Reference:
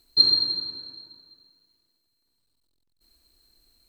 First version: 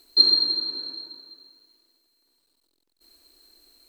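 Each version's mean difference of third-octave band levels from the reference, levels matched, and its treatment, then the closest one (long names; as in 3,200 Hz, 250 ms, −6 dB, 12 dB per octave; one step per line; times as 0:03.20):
2.5 dB: low shelf with overshoot 220 Hz −12 dB, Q 1.5
in parallel at +1.5 dB: downward compressor, threshold −35 dBFS, peak gain reduction 21.5 dB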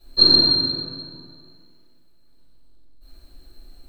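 6.0 dB: high-shelf EQ 2,400 Hz −11 dB
rectangular room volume 150 cubic metres, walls mixed, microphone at 5.7 metres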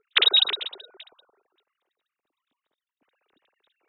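8.0 dB: three sine waves on the formant tracks
dynamic equaliser 1,200 Hz, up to +5 dB, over −44 dBFS, Q 2.5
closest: first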